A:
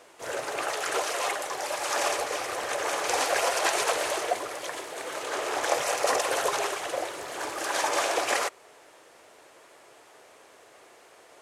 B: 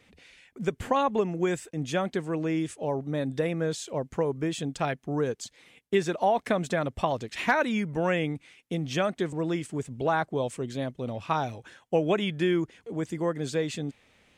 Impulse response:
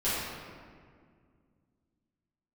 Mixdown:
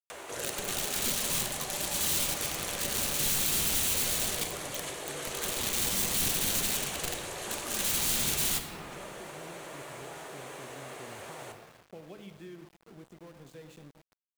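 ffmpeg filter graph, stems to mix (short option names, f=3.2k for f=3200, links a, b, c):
-filter_complex "[0:a]adynamicequalizer=threshold=0.00708:dfrequency=330:dqfactor=1.3:tfrequency=330:tqfactor=1.3:attack=5:release=100:ratio=0.375:range=2.5:mode=cutabove:tftype=bell,acompressor=mode=upward:threshold=-38dB:ratio=2.5,aeval=exprs='(mod(16.8*val(0)+1,2)-1)/16.8':c=same,adelay=100,volume=1.5dB,asplit=2[a][b];[b]volume=-13.5dB[c];[1:a]lowshelf=f=130:g=8,acompressor=threshold=-44dB:ratio=2,volume=-12.5dB,asplit=2[d][e];[e]volume=-16.5dB[f];[2:a]atrim=start_sample=2205[g];[c][f]amix=inputs=2:normalize=0[h];[h][g]afir=irnorm=-1:irlink=0[i];[a][d][i]amix=inputs=3:normalize=0,equalizer=f=5.1k:t=o:w=0.29:g=-6,acrossover=split=310|3000[j][k][l];[k]acompressor=threshold=-41dB:ratio=6[m];[j][m][l]amix=inputs=3:normalize=0,aeval=exprs='val(0)*gte(abs(val(0)),0.00251)':c=same"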